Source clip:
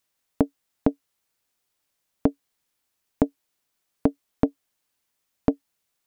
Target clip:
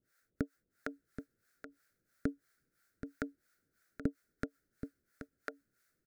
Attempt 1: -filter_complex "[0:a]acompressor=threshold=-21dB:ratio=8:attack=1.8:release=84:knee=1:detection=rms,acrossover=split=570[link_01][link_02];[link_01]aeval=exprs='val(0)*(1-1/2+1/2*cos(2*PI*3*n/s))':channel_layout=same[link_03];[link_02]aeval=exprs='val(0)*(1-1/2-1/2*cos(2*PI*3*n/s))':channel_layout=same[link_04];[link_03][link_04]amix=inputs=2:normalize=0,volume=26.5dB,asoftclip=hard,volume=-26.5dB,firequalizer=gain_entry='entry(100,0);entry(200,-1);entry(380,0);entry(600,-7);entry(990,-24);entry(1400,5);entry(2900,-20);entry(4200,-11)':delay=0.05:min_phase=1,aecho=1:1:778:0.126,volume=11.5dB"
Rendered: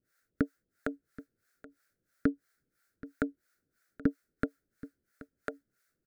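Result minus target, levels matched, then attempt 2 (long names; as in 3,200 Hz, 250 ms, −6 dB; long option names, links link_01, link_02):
downward compressor: peak gain reduction −8.5 dB; echo-to-direct −8 dB
-filter_complex "[0:a]acompressor=threshold=-30.5dB:ratio=8:attack=1.8:release=84:knee=1:detection=rms,acrossover=split=570[link_01][link_02];[link_01]aeval=exprs='val(0)*(1-1/2+1/2*cos(2*PI*3*n/s))':channel_layout=same[link_03];[link_02]aeval=exprs='val(0)*(1-1/2-1/2*cos(2*PI*3*n/s))':channel_layout=same[link_04];[link_03][link_04]amix=inputs=2:normalize=0,volume=26.5dB,asoftclip=hard,volume=-26.5dB,firequalizer=gain_entry='entry(100,0);entry(200,-1);entry(380,0);entry(600,-7);entry(990,-24);entry(1400,5);entry(2900,-20);entry(4200,-11)':delay=0.05:min_phase=1,aecho=1:1:778:0.316,volume=11.5dB"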